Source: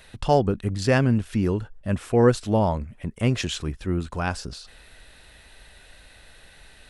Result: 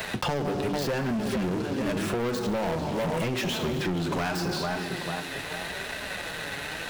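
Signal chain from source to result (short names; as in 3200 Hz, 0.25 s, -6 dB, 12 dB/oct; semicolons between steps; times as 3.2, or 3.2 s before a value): tracing distortion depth 0.041 ms; HPF 150 Hz 12 dB/oct; high shelf 6800 Hz +11 dB; notches 50/100/150/200/250/300/350 Hz; tape echo 0.446 s, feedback 37%, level -10.5 dB, low-pass 1400 Hz; plate-style reverb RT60 1.1 s, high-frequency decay 0.95×, DRR 10 dB; flange 0.84 Hz, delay 4.5 ms, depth 2.8 ms, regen +45%; compressor, threshold -34 dBFS, peak gain reduction 15 dB; bell 9500 Hz -14 dB 1.2 oct; sample leveller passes 5; three-band squash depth 70%; gain -2.5 dB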